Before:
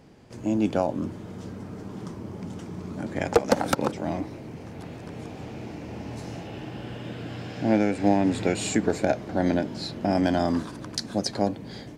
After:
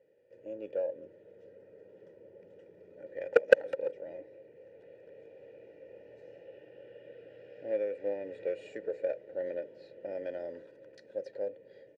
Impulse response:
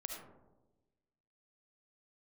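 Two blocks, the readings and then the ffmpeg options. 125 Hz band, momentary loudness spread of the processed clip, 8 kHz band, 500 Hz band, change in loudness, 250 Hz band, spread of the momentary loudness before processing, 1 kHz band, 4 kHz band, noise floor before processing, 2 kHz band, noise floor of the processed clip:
under -30 dB, 23 LU, under -25 dB, -4.0 dB, -7.0 dB, -25.0 dB, 15 LU, -20.5 dB, under -15 dB, -41 dBFS, -4.0 dB, -59 dBFS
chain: -filter_complex "[0:a]asplit=3[a][b][c];[a]bandpass=f=530:t=q:w=8,volume=0dB[d];[b]bandpass=f=1.84k:t=q:w=8,volume=-6dB[e];[c]bandpass=f=2.48k:t=q:w=8,volume=-9dB[f];[d][e][f]amix=inputs=3:normalize=0,aecho=1:1:2.1:0.54,aeval=exprs='0.335*(cos(1*acos(clip(val(0)/0.335,-1,1)))-cos(1*PI/2))+0.119*(cos(3*acos(clip(val(0)/0.335,-1,1)))-cos(3*PI/2))+0.0299*(cos(5*acos(clip(val(0)/0.335,-1,1)))-cos(5*PI/2))':c=same,asplit=2[g][h];[h]adynamicsmooth=sensitivity=5.5:basefreq=1.9k,volume=1dB[i];[g][i]amix=inputs=2:normalize=0,volume=-1.5dB"

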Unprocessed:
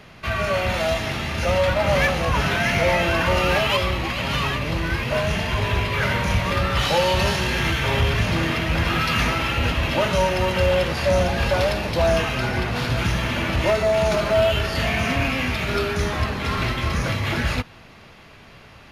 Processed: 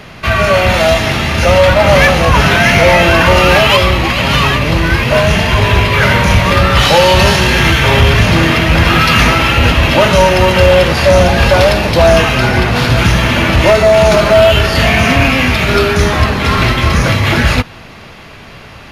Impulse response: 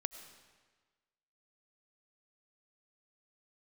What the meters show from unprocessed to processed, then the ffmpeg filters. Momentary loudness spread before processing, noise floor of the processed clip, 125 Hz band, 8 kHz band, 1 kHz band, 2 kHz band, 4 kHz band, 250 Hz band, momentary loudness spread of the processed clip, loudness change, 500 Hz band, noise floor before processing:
5 LU, -33 dBFS, +12.0 dB, +12.5 dB, +12.0 dB, +12.5 dB, +12.5 dB, +12.5 dB, 4 LU, +12.0 dB, +12.0 dB, -46 dBFS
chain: -af "apsyclip=14dB,volume=-1.5dB"

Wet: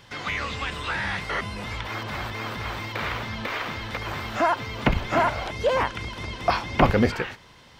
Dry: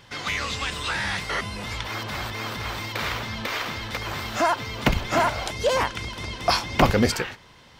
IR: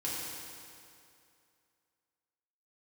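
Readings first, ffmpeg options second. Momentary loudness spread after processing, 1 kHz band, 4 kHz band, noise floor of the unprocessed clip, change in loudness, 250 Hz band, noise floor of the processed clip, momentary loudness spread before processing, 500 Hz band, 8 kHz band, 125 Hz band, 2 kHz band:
9 LU, 0.0 dB, -5.0 dB, -51 dBFS, -1.0 dB, 0.0 dB, -51 dBFS, 9 LU, 0.0 dB, -10.0 dB, 0.0 dB, -1.0 dB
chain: -filter_complex "[0:a]acrossover=split=3200[a][b];[b]acompressor=threshold=-45dB:ratio=4:attack=1:release=60[c];[a][c]amix=inputs=2:normalize=0"

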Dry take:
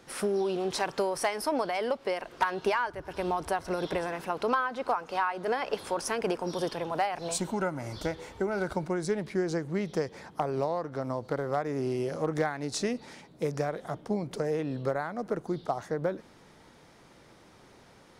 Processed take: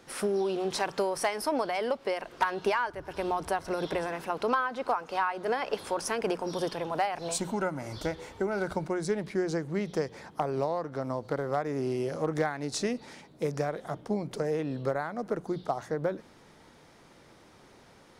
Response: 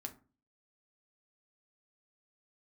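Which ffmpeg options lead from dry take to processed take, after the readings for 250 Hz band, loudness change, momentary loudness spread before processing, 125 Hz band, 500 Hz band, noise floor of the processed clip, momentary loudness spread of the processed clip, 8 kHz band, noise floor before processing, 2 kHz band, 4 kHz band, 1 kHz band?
0.0 dB, 0.0 dB, 5 LU, -0.5 dB, 0.0 dB, -57 dBFS, 5 LU, 0.0 dB, -56 dBFS, 0.0 dB, 0.0 dB, 0.0 dB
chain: -af "bandreject=f=60:t=h:w=6,bandreject=f=120:t=h:w=6,bandreject=f=180:t=h:w=6"

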